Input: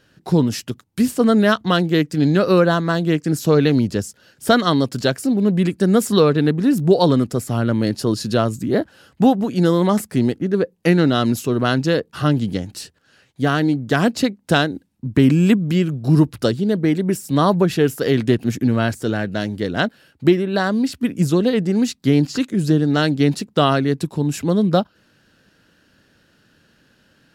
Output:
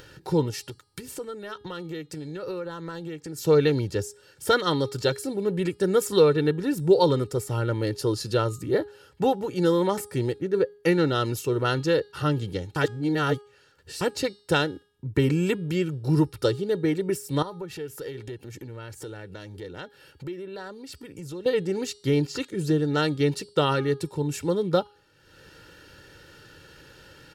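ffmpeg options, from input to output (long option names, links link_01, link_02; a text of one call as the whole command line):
ffmpeg -i in.wav -filter_complex "[0:a]asplit=3[link_01][link_02][link_03];[link_01]afade=type=out:start_time=0.5:duration=0.02[link_04];[link_02]acompressor=threshold=-24dB:ratio=12:attack=3.2:release=140:knee=1:detection=peak,afade=type=in:start_time=0.5:duration=0.02,afade=type=out:start_time=3.37:duration=0.02[link_05];[link_03]afade=type=in:start_time=3.37:duration=0.02[link_06];[link_04][link_05][link_06]amix=inputs=3:normalize=0,asettb=1/sr,asplit=3[link_07][link_08][link_09];[link_07]atrim=end=17.424[link_10];[link_08]atrim=start=17.42:end=21.46,asetpts=PTS-STARTPTS,afade=type=in:duration=0.004:curve=qsin,afade=type=out:start_time=4.036:duration=0.004:curve=qsin,acompressor=threshold=-31dB:ratio=3:attack=3.2:release=140:knee=1:detection=peak[link_11];[link_09]atrim=start=21.456[link_12];[link_10][link_11]acrossfade=duration=0.004:curve1=hsin:curve2=qsin[link_13];[link_13][link_12]acrossfade=duration=0.004:curve1=qsin:curve2=hsin,asplit=3[link_14][link_15][link_16];[link_14]atrim=end=12.762[link_17];[link_15]atrim=start=12.758:end=14.012,asetpts=PTS-STARTPTS,areverse[link_18];[link_16]atrim=start=14.008[link_19];[link_17][link_18]acrossfade=duration=0.004:curve1=hsin:curve2=hsin[link_20];[link_20][link_19]acrossfade=duration=0.004:curve1=hsin:curve2=hsin,aecho=1:1:2.2:0.76,bandreject=frequency=412.4:width_type=h:width=4,bandreject=frequency=824.8:width_type=h:width=4,bandreject=frequency=1237.2:width_type=h:width=4,bandreject=frequency=1649.6:width_type=h:width=4,bandreject=frequency=2062:width_type=h:width=4,bandreject=frequency=2474.4:width_type=h:width=4,bandreject=frequency=2886.8:width_type=h:width=4,bandreject=frequency=3299.2:width_type=h:width=4,bandreject=frequency=3711.6:width_type=h:width=4,bandreject=frequency=4124:width_type=h:width=4,bandreject=frequency=4536.4:width_type=h:width=4,bandreject=frequency=4948.8:width_type=h:width=4,bandreject=frequency=5361.2:width_type=h:width=4,bandreject=frequency=5773.6:width_type=h:width=4,bandreject=frequency=6186:width_type=h:width=4,bandreject=frequency=6598.4:width_type=h:width=4,bandreject=frequency=7010.8:width_type=h:width=4,bandreject=frequency=7423.2:width_type=h:width=4,bandreject=frequency=7835.6:width_type=h:width=4,bandreject=frequency=8248:width_type=h:width=4,bandreject=frequency=8660.4:width_type=h:width=4,bandreject=frequency=9072.8:width_type=h:width=4,bandreject=frequency=9485.2:width_type=h:width=4,bandreject=frequency=9897.6:width_type=h:width=4,bandreject=frequency=10310:width_type=h:width=4,bandreject=frequency=10722.4:width_type=h:width=4,bandreject=frequency=11134.8:width_type=h:width=4,bandreject=frequency=11547.2:width_type=h:width=4,acompressor=mode=upward:threshold=-30dB:ratio=2.5,volume=-7dB" out.wav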